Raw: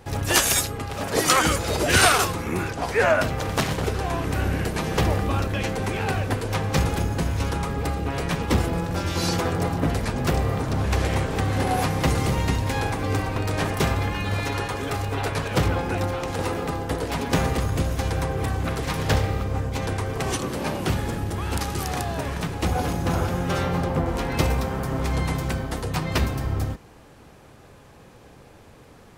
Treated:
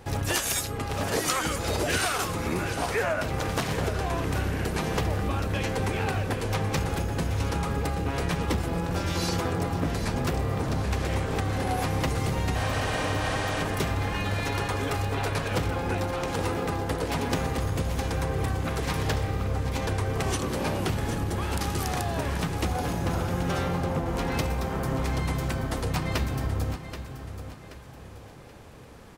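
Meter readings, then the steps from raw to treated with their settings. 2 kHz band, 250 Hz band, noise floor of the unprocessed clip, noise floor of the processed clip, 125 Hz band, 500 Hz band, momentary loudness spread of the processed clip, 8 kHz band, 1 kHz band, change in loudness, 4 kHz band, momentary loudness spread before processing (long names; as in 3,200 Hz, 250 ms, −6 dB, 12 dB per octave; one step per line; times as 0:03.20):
−4.5 dB, −3.5 dB, −49 dBFS, −44 dBFS, −3.5 dB, −3.5 dB, 2 LU, −5.5 dB, −4.0 dB, −4.0 dB, −5.0 dB, 7 LU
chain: healed spectral selection 0:12.58–0:13.58, 470–11,000 Hz after
downward compressor 6 to 1, threshold −24 dBFS, peak gain reduction 11.5 dB
repeating echo 779 ms, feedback 38%, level −11 dB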